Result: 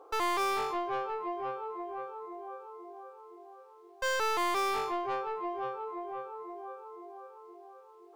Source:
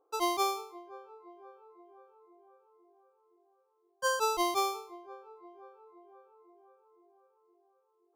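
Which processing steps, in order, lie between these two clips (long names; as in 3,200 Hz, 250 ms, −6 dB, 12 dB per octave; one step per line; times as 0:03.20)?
mid-hump overdrive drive 35 dB, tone 2,600 Hz, clips at −17 dBFS
level −6 dB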